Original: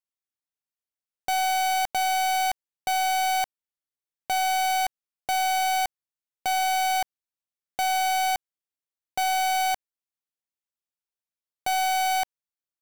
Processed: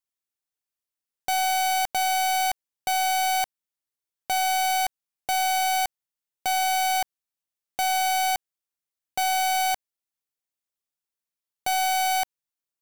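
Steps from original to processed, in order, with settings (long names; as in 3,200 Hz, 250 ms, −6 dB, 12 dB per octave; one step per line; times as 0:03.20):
high-shelf EQ 5,000 Hz +4 dB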